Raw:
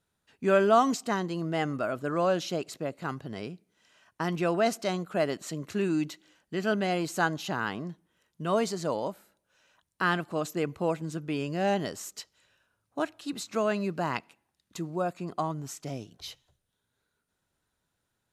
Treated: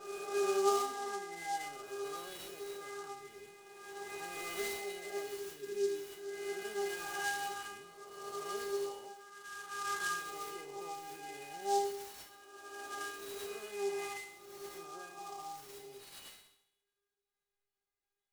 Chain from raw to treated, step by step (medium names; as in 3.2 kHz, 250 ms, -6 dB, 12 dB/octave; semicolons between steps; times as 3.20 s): reverse spectral sustain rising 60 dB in 2.28 s; 0.81–1.56 s: low-pass 2.2 kHz 24 dB/octave; inharmonic resonator 400 Hz, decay 0.69 s, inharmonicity 0.002; spring tank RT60 1 s, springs 41 ms, chirp 30 ms, DRR 8.5 dB; delay time shaken by noise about 5.6 kHz, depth 0.042 ms; trim +5 dB